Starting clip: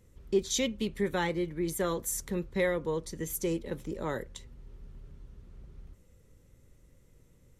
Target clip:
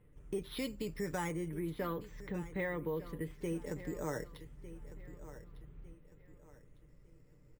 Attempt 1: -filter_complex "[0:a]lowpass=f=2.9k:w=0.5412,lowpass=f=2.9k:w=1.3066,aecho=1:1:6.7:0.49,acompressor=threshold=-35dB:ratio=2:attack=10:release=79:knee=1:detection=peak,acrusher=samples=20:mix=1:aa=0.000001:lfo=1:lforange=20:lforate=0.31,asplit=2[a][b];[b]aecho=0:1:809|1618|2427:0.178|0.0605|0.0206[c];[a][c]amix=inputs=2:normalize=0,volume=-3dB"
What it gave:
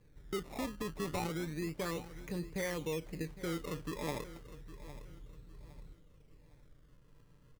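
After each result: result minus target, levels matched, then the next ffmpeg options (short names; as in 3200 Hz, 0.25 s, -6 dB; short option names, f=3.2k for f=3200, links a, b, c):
decimation with a swept rate: distortion +13 dB; echo 0.394 s early
-filter_complex "[0:a]lowpass=f=2.9k:w=0.5412,lowpass=f=2.9k:w=1.3066,aecho=1:1:6.7:0.49,acompressor=threshold=-35dB:ratio=2:attack=10:release=79:knee=1:detection=peak,acrusher=samples=4:mix=1:aa=0.000001:lfo=1:lforange=4:lforate=0.31,asplit=2[a][b];[b]aecho=0:1:809|1618|2427:0.178|0.0605|0.0206[c];[a][c]amix=inputs=2:normalize=0,volume=-3dB"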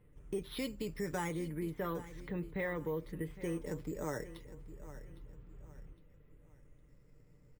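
echo 0.394 s early
-filter_complex "[0:a]lowpass=f=2.9k:w=0.5412,lowpass=f=2.9k:w=1.3066,aecho=1:1:6.7:0.49,acompressor=threshold=-35dB:ratio=2:attack=10:release=79:knee=1:detection=peak,acrusher=samples=4:mix=1:aa=0.000001:lfo=1:lforange=4:lforate=0.31,asplit=2[a][b];[b]aecho=0:1:1203|2406|3609:0.178|0.0605|0.0206[c];[a][c]amix=inputs=2:normalize=0,volume=-3dB"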